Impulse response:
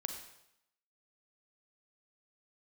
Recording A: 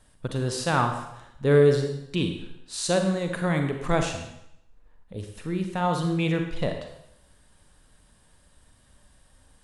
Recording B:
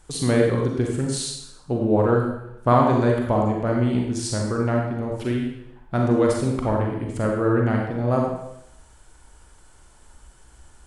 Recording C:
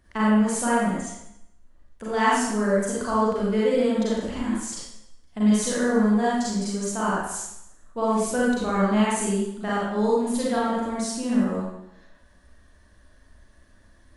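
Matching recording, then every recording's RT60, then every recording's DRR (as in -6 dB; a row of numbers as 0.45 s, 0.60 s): A; 0.80 s, 0.80 s, 0.80 s; 5.0 dB, -0.5 dB, -7.5 dB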